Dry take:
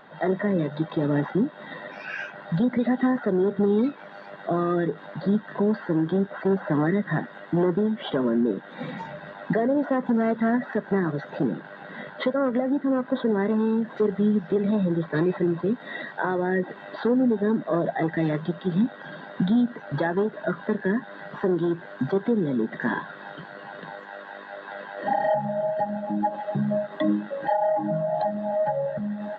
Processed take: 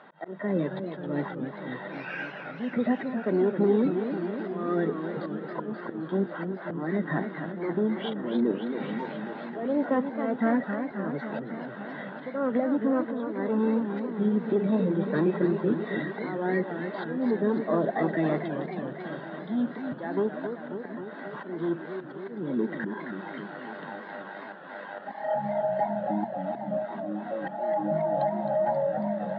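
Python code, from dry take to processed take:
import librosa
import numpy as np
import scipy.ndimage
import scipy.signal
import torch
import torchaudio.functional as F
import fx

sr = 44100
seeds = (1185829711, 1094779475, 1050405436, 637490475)

y = fx.notch(x, sr, hz=1700.0, q=24.0)
y = fx.auto_swell(y, sr, attack_ms=314.0)
y = fx.bandpass_edges(y, sr, low_hz=160.0, high_hz=3600.0)
y = fx.echo_warbled(y, sr, ms=270, feedback_pct=72, rate_hz=2.8, cents=178, wet_db=-8)
y = F.gain(torch.from_numpy(y), -1.5).numpy()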